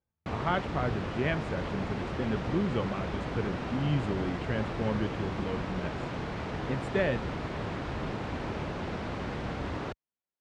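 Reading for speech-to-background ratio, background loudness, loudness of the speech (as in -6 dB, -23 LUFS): 2.0 dB, -35.5 LUFS, -33.5 LUFS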